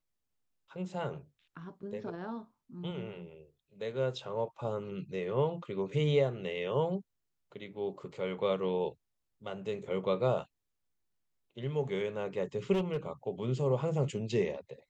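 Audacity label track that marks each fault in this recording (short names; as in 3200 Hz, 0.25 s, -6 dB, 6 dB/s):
12.720000	12.970000	clipped -26.5 dBFS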